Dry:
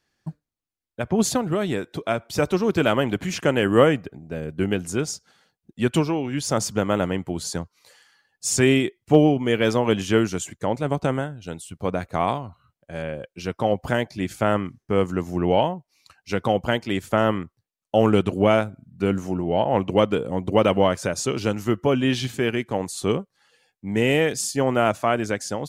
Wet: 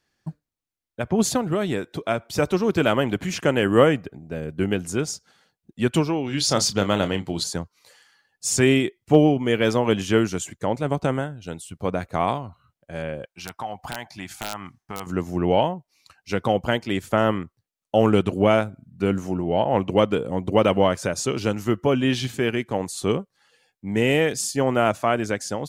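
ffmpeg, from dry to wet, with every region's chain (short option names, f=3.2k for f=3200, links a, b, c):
-filter_complex "[0:a]asettb=1/sr,asplit=3[a][b][c];[a]atrim=end=6.264[d];[b]atrim=start=6.26:end=7.44,asetpts=PTS-STARTPTS,afade=t=in:d=0.004:c=qsin,afade=t=out:st=1.176:d=0.004:c=qsin,equalizer=f=4.2k:t=o:w=0.95:g=12.5,asplit=2[e][f];[f]adelay=30,volume=-11dB[g];[e][g]amix=inputs=2:normalize=0,atrim=end_sample=52038[h];[c]atrim=start=7.436[i];[d][h]acrossfade=d=0.004:c1=hsin:c2=qsin[j];[j][i]acrossfade=d=0.004:c1=qsin:c2=hsin,asettb=1/sr,asplit=3[k][l][m];[k]atrim=end=13.254[n];[l]atrim=start=13.25:end=15.07,asetpts=PTS-STARTPTS,afade=t=in:d=0.004:c=qsin,afade=t=out:st=1.816:d=0.004:c=qsin,lowshelf=f=630:t=q:w=3:g=-7,acompressor=threshold=-30dB:ratio=2.5:attack=3.2:release=140:knee=1:detection=peak,aeval=exprs='(mod(8.41*val(0)+1,2)-1)/8.41':c=same[o];[m]atrim=start=15.066[p];[n][o]acrossfade=d=0.004:c1=hsin:c2=qsin[q];[q][p]acrossfade=d=0.004:c1=qsin:c2=hsin"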